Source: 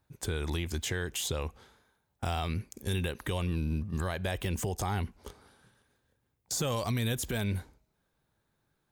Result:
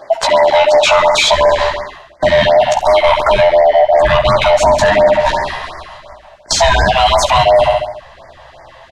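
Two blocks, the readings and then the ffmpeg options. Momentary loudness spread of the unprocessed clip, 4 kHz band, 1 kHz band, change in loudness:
6 LU, +23.0 dB, +29.5 dB, +23.0 dB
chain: -filter_complex "[0:a]afftfilt=real='real(if(lt(b,1008),b+24*(1-2*mod(floor(b/24),2)),b),0)':imag='imag(if(lt(b,1008),b+24*(1-2*mod(floor(b/24),2)),b),0)':win_size=2048:overlap=0.75,adynamicequalizer=threshold=0.00251:dfrequency=1700:dqfactor=3.8:tfrequency=1700:tqfactor=3.8:attack=5:release=100:ratio=0.375:range=2:mode=cutabove:tftype=bell,asplit=2[s0][s1];[s1]adelay=15,volume=0.596[s2];[s0][s2]amix=inputs=2:normalize=0,aecho=1:1:68|136|204|272|340|408:0.224|0.13|0.0753|0.0437|0.0253|0.0147,acrossover=split=150|3000[s3][s4][s5];[s3]acompressor=threshold=0.00398:ratio=2[s6];[s6][s4][s5]amix=inputs=3:normalize=0,asubboost=boost=8.5:cutoff=100,asplit=2[s7][s8];[s8]highpass=f=720:p=1,volume=5.62,asoftclip=type=tanh:threshold=0.168[s9];[s7][s9]amix=inputs=2:normalize=0,lowpass=f=3100:p=1,volume=0.501,areverse,acompressor=threshold=0.02:ratio=8,areverse,asoftclip=type=tanh:threshold=0.0398,lowpass=4700,alimiter=level_in=50.1:limit=0.891:release=50:level=0:latency=1,afftfilt=real='re*(1-between(b*sr/1024,260*pow(3300/260,0.5+0.5*sin(2*PI*2.8*pts/sr))/1.41,260*pow(3300/260,0.5+0.5*sin(2*PI*2.8*pts/sr))*1.41))':imag='im*(1-between(b*sr/1024,260*pow(3300/260,0.5+0.5*sin(2*PI*2.8*pts/sr))/1.41,260*pow(3300/260,0.5+0.5*sin(2*PI*2.8*pts/sr))*1.41))':win_size=1024:overlap=0.75,volume=0.794"

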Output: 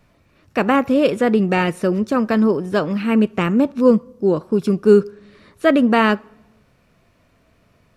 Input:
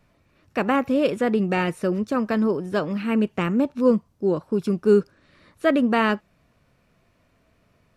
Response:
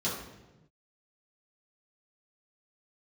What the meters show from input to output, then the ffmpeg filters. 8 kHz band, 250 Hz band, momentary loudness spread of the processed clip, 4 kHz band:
no reading, +5.5 dB, 6 LU, +5.5 dB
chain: -filter_complex "[0:a]asplit=2[s0][s1];[1:a]atrim=start_sample=2205,lowshelf=f=470:g=-9.5[s2];[s1][s2]afir=irnorm=-1:irlink=0,volume=0.0398[s3];[s0][s3]amix=inputs=2:normalize=0,volume=1.78"

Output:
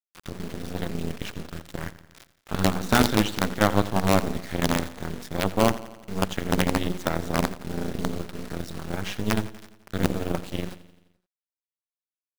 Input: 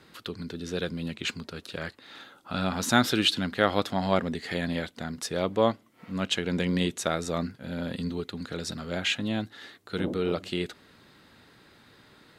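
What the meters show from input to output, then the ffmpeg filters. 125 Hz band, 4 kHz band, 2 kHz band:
+4.5 dB, -2.5 dB, +1.0 dB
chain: -filter_complex "[0:a]highpass=f=140:p=1,aemphasis=mode=reproduction:type=riaa,bandreject=f=60:t=h:w=6,bandreject=f=120:t=h:w=6,bandreject=f=180:t=h:w=6,bandreject=f=240:t=h:w=6,bandreject=f=300:t=h:w=6,bandreject=f=360:t=h:w=6,bandreject=f=420:t=h:w=6,bandreject=f=480:t=h:w=6,deesser=0.75,equalizer=f=410:t=o:w=0.31:g=-11,bandreject=f=2500:w=23,acrusher=bits=4:dc=4:mix=0:aa=0.000001,tremolo=f=200:d=0.75,asplit=2[s0][s1];[s1]aecho=0:1:86|172|258|344|430|516:0.15|0.0883|0.0521|0.0307|0.0181|0.0107[s2];[s0][s2]amix=inputs=2:normalize=0,volume=1.78"

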